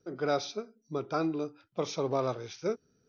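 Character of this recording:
background noise floor −73 dBFS
spectral slope −5.0 dB per octave

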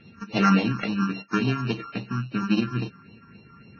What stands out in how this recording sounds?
a buzz of ramps at a fixed pitch in blocks of 32 samples
phaser sweep stages 4, 3.6 Hz, lowest notch 580–1,400 Hz
Ogg Vorbis

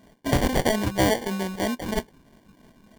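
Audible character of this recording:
phaser sweep stages 4, 3.1 Hz, lowest notch 510–4,500 Hz
aliases and images of a low sample rate 1,300 Hz, jitter 0%

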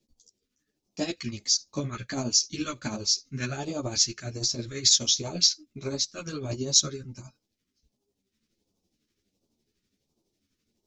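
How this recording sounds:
phaser sweep stages 2, 1.4 Hz, lowest notch 730–1,700 Hz
tremolo triangle 12 Hz, depth 65%
a shimmering, thickened sound

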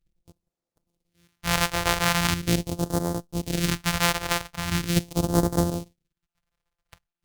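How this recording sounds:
a buzz of ramps at a fixed pitch in blocks of 256 samples
chopped level 7 Hz, depth 65%, duty 90%
phaser sweep stages 2, 0.41 Hz, lowest notch 240–2,400 Hz
Opus

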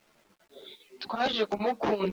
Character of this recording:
chopped level 2.5 Hz, depth 60%, duty 85%
a quantiser's noise floor 10 bits, dither none
a shimmering, thickened sound

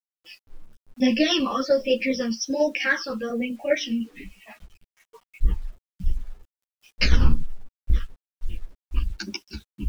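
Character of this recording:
tremolo saw down 10 Hz, depth 45%
phaser sweep stages 12, 1.2 Hz, lowest notch 640–1,400 Hz
a quantiser's noise floor 10 bits, dither none
a shimmering, thickened sound

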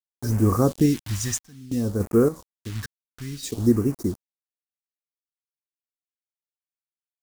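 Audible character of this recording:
a quantiser's noise floor 6 bits, dither none
phaser sweep stages 2, 0.58 Hz, lowest notch 300–3,400 Hz
sample-and-hold tremolo, depth 100%

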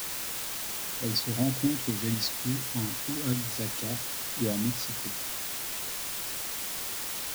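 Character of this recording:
tremolo saw up 4.2 Hz, depth 40%
phaser sweep stages 2, 0.28 Hz, lowest notch 640–1,500 Hz
a quantiser's noise floor 6 bits, dither triangular

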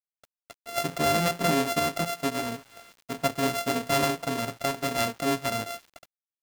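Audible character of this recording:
a buzz of ramps at a fixed pitch in blocks of 64 samples
tremolo saw up 3.9 Hz, depth 30%
a quantiser's noise floor 8 bits, dither none

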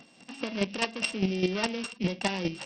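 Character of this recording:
a buzz of ramps at a fixed pitch in blocks of 16 samples
chopped level 4.9 Hz, depth 60%, duty 15%
SBC

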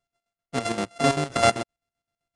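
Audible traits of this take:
a buzz of ramps at a fixed pitch in blocks of 64 samples
chopped level 7.7 Hz, depth 65%, duty 55%
AAC

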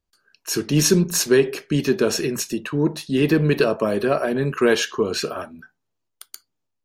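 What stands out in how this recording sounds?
background noise floor −77 dBFS
spectral slope −4.5 dB per octave

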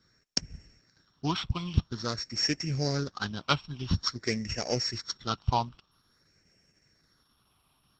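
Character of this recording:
a buzz of ramps at a fixed pitch in blocks of 8 samples
phaser sweep stages 6, 0.49 Hz, lowest notch 490–1,000 Hz
Opus

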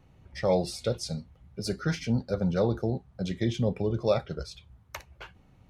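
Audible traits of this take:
background noise floor −59 dBFS
spectral slope −6.5 dB per octave

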